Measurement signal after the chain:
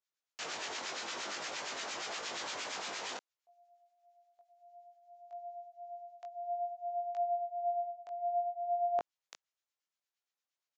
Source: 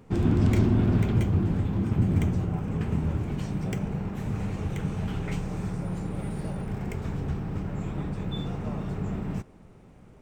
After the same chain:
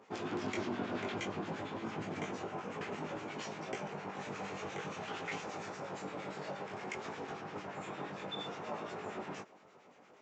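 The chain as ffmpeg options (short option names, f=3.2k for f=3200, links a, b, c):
-filter_complex "[0:a]highpass=540,areverse,acompressor=threshold=-35dB:ratio=16,areverse,acrossover=split=1300[a][b];[a]aeval=exprs='val(0)*(1-0.7/2+0.7/2*cos(2*PI*8.6*n/s))':c=same[c];[b]aeval=exprs='val(0)*(1-0.7/2-0.7/2*cos(2*PI*8.6*n/s))':c=same[d];[c][d]amix=inputs=2:normalize=0,flanger=delay=18.5:depth=2.2:speed=0.56,aresample=16000,aresample=44100,volume=7.5dB"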